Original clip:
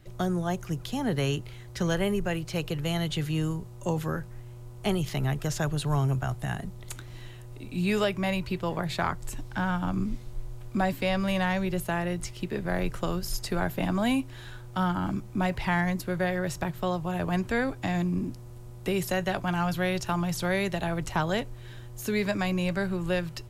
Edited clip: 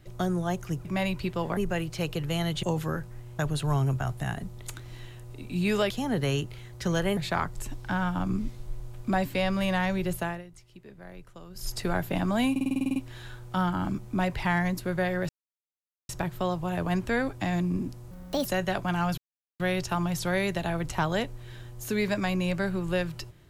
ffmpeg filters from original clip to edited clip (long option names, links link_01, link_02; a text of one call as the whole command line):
ffmpeg -i in.wav -filter_complex "[0:a]asplit=22[link_01][link_02][link_03][link_04][link_05][link_06][link_07][link_08][link_09][link_10][link_11][link_12][link_13][link_14][link_15][link_16][link_17][link_18][link_19][link_20][link_21][link_22];[link_01]atrim=end=0.852[link_23];[link_02]atrim=start=8.118:end=8.842[link_24];[link_03]atrim=start=2.118:end=3.182[link_25];[link_04]atrim=start=3.828:end=4.592[link_26];[link_05]atrim=start=5.608:end=8.122[link_27];[link_06]atrim=start=0.848:end=2.122[link_28];[link_07]atrim=start=8.838:end=12.11,asetpts=PTS-STARTPTS,afade=type=out:start_time=3.032:duration=0.24:silence=0.141254[link_29];[link_08]atrim=start=12.11:end=13.17,asetpts=PTS-STARTPTS,volume=-17dB[link_30];[link_09]atrim=start=13.17:end=14.232,asetpts=PTS-STARTPTS,afade=type=in:duration=0.24:silence=0.141254[link_31];[link_10]atrim=start=14.178:end=14.232[link_32];[link_11]atrim=start=14.178:end=14.232[link_33];[link_12]atrim=start=14.178:end=14.232[link_34];[link_13]atrim=start=14.178:end=14.232[link_35];[link_14]atrim=start=14.178:end=14.232[link_36];[link_15]atrim=start=14.178:end=14.232[link_37];[link_16]atrim=start=14.178:end=14.232[link_38];[link_17]atrim=start=14.178:end=14.232[link_39];[link_18]atrim=start=14.178:end=16.51,asetpts=PTS-STARTPTS,afade=type=out:start_time=2.328:duration=0.004:curve=hsin,apad=pad_dur=0.8[link_40];[link_19]atrim=start=16.51:end=18.534,asetpts=PTS-STARTPTS,afade=type=in:duration=0.004:curve=hsin[link_41];[link_20]atrim=start=18.53:end=19.05,asetpts=PTS-STARTPTS,asetrate=66150,aresample=44100[link_42];[link_21]atrim=start=19.046:end=19.77,asetpts=PTS-STARTPTS,afade=type=out:start_time=0.72:duration=0.004:curve=hsin,apad=pad_dur=0.42[link_43];[link_22]atrim=start=19.77,asetpts=PTS-STARTPTS,afade=type=in:duration=0.004:curve=hsin[link_44];[link_23][link_24]acrossfade=duration=0.004:curve1=hsin:curve2=hsin[link_45];[link_45][link_25]acrossfade=duration=0.004:curve1=hsin:curve2=hsin[link_46];[link_46][link_26]acrossfade=duration=0.004:curve1=hsin:curve2=hsin[link_47];[link_47][link_27]acrossfade=duration=0.004:curve1=hsin:curve2=hsin[link_48];[link_48][link_28]acrossfade=duration=0.004:curve1=hsin:curve2=hsin[link_49];[link_29][link_30][link_31]concat=n=3:v=0:a=1[link_50];[link_49][link_50]acrossfade=duration=0.004:curve1=hsin:curve2=hsin[link_51];[link_51][link_32]acrossfade=duration=0.004:curve1=hsin:curve2=hsin[link_52];[link_52][link_33]acrossfade=duration=0.004:curve1=hsin:curve2=hsin[link_53];[link_53][link_34]acrossfade=duration=0.004:curve1=hsin:curve2=hsin[link_54];[link_54][link_35]acrossfade=duration=0.004:curve1=hsin:curve2=hsin[link_55];[link_55][link_36]acrossfade=duration=0.004:curve1=hsin:curve2=hsin[link_56];[link_56][link_37]acrossfade=duration=0.004:curve1=hsin:curve2=hsin[link_57];[link_57][link_38]acrossfade=duration=0.004:curve1=hsin:curve2=hsin[link_58];[link_58][link_39]acrossfade=duration=0.004:curve1=hsin:curve2=hsin[link_59];[link_40][link_41]concat=n=2:v=0:a=1[link_60];[link_59][link_60]acrossfade=duration=0.004:curve1=hsin:curve2=hsin[link_61];[link_61][link_42]acrossfade=duration=0.004:curve1=hsin:curve2=hsin[link_62];[link_43][link_44]concat=n=2:v=0:a=1[link_63];[link_62][link_63]acrossfade=duration=0.004:curve1=hsin:curve2=hsin" out.wav